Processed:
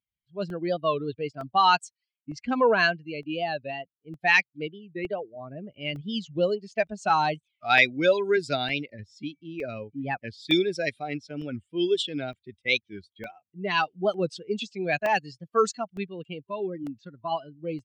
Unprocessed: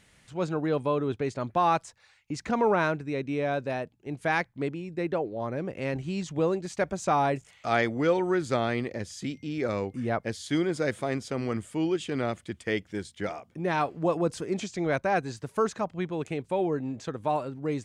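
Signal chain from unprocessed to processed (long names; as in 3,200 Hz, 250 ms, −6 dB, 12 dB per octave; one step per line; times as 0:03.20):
spectral dynamics exaggerated over time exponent 2
meter weighting curve D
pitch shifter +1.5 semitones
gain on a spectral selection 0:16.41–0:17.32, 400–1,000 Hz −8 dB
low-pass that shuts in the quiet parts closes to 1,100 Hz, open at −23.5 dBFS
regular buffer underruns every 0.91 s, samples 64, zero, from 0:00.50
wow of a warped record 45 rpm, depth 160 cents
level +6 dB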